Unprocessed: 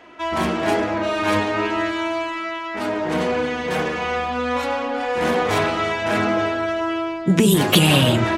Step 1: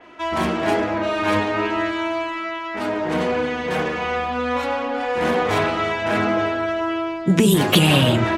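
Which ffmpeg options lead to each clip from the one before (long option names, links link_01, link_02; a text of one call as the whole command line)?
ffmpeg -i in.wav -af "adynamicequalizer=threshold=0.0158:dfrequency=4200:dqfactor=0.7:tfrequency=4200:tqfactor=0.7:attack=5:release=100:ratio=0.375:range=2.5:mode=cutabove:tftype=highshelf" out.wav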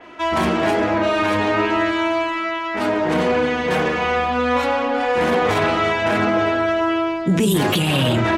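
ffmpeg -i in.wav -af "alimiter=limit=-13.5dB:level=0:latency=1:release=28,volume=4dB" out.wav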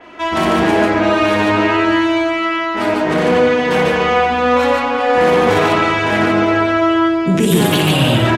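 ffmpeg -i in.wav -af "aecho=1:1:58.31|145.8:0.501|0.794,volume=2dB" out.wav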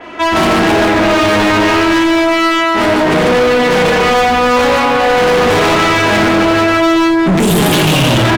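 ffmpeg -i in.wav -af "asoftclip=type=hard:threshold=-17dB,volume=8.5dB" out.wav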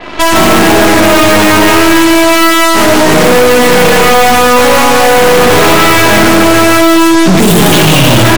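ffmpeg -i in.wav -af "aeval=exprs='0.398*(cos(1*acos(clip(val(0)/0.398,-1,1)))-cos(1*PI/2))+0.158*(cos(6*acos(clip(val(0)/0.398,-1,1)))-cos(6*PI/2))':channel_layout=same,volume=4.5dB" out.wav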